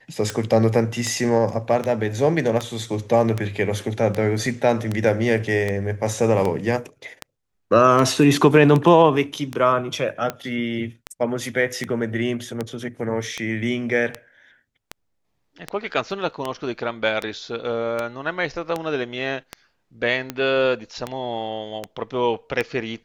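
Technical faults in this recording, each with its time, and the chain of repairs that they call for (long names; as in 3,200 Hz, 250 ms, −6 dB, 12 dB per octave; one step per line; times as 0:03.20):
scratch tick 78 rpm −11 dBFS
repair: click removal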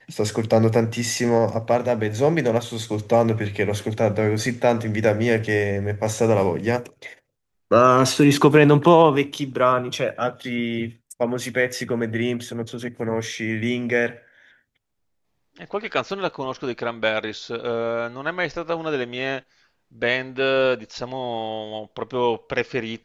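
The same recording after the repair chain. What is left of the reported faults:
none of them is left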